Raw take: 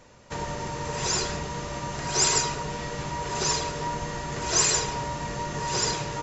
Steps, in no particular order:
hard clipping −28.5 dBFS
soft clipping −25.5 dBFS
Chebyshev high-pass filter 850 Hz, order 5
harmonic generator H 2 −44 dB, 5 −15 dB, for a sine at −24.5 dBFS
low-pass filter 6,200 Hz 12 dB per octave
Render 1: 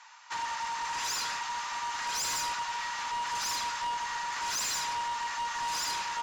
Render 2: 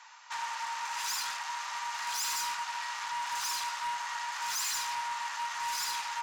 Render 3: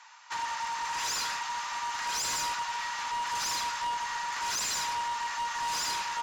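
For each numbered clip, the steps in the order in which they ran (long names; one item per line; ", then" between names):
Chebyshev high-pass filter, then harmonic generator, then low-pass filter, then hard clipping, then soft clipping
low-pass filter, then hard clipping, then harmonic generator, then Chebyshev high-pass filter, then soft clipping
Chebyshev high-pass filter, then hard clipping, then soft clipping, then low-pass filter, then harmonic generator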